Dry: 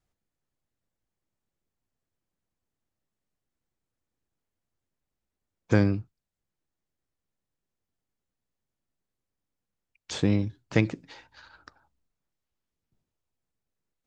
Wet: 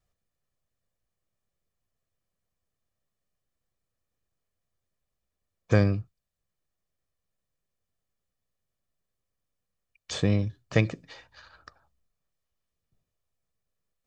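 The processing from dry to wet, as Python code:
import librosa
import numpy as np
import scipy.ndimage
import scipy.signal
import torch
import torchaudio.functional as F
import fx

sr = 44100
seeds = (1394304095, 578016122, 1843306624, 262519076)

y = x + 0.43 * np.pad(x, (int(1.7 * sr / 1000.0), 0))[:len(x)]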